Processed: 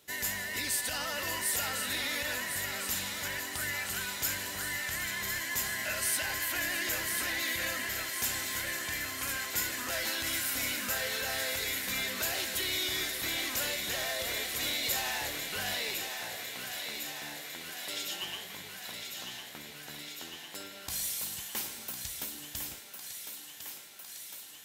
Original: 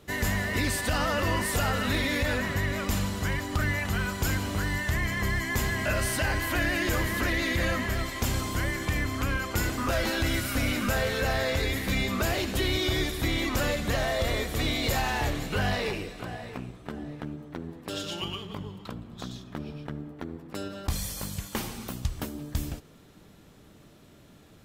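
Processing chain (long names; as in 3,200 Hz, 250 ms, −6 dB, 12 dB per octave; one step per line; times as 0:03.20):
spectral tilt +3.5 dB per octave
notch filter 1,200 Hz, Q 10
feedback echo with a high-pass in the loop 1,054 ms, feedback 77%, high-pass 370 Hz, level −7 dB
level −8.5 dB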